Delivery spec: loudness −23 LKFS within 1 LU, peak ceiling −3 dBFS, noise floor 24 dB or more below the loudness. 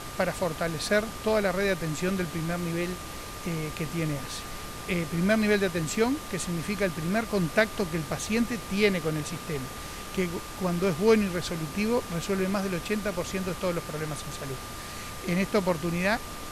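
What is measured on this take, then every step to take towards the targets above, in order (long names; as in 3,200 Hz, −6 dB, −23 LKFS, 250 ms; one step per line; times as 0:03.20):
interfering tone 1,200 Hz; level of the tone −44 dBFS; background noise floor −39 dBFS; target noise floor −53 dBFS; integrated loudness −28.5 LKFS; sample peak −10.0 dBFS; target loudness −23.0 LKFS
→ notch filter 1,200 Hz, Q 30
noise reduction from a noise print 14 dB
level +5.5 dB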